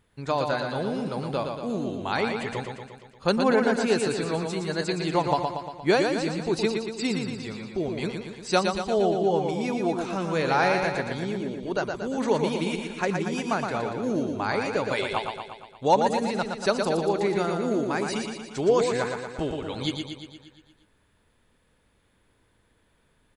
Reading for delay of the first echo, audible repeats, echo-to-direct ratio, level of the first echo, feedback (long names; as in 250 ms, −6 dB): 117 ms, 7, −3.0 dB, −5.0 dB, 59%